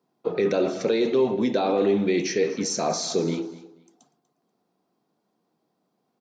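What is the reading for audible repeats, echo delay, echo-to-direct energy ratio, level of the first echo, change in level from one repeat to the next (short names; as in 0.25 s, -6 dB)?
2, 0.242 s, -17.5 dB, -18.0 dB, -12.5 dB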